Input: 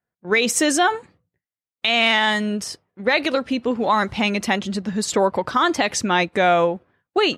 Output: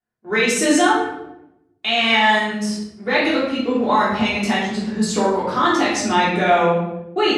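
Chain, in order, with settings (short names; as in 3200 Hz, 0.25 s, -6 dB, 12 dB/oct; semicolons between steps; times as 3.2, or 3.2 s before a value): LPF 12000 Hz 24 dB/oct; shoebox room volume 270 m³, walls mixed, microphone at 3.3 m; gain -8.5 dB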